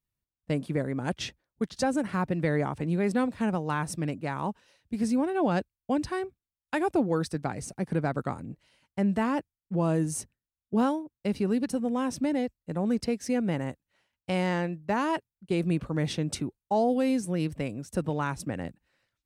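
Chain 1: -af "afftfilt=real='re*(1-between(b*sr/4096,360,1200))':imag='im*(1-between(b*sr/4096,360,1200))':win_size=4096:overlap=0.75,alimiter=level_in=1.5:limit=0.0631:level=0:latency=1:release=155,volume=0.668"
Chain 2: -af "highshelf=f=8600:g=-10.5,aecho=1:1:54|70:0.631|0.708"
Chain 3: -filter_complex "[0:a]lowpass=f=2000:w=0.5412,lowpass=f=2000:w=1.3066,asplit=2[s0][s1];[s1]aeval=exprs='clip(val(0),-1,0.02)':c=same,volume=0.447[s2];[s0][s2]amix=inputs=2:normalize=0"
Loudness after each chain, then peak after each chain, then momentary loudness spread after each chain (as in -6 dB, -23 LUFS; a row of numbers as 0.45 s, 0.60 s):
-36.5 LUFS, -27.0 LUFS, -27.5 LUFS; -27.5 dBFS, -11.0 dBFS, -13.0 dBFS; 8 LU, 10 LU, 9 LU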